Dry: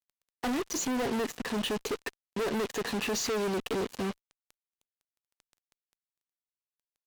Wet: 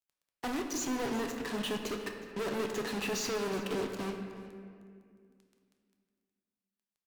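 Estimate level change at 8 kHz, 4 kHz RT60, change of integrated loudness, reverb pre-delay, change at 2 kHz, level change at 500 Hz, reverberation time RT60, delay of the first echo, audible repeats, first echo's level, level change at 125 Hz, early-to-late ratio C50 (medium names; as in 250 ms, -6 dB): -3.5 dB, 1.3 s, -3.0 dB, 6 ms, -2.5 dB, -3.0 dB, 2.1 s, 365 ms, 1, -18.5 dB, -2.5 dB, 5.0 dB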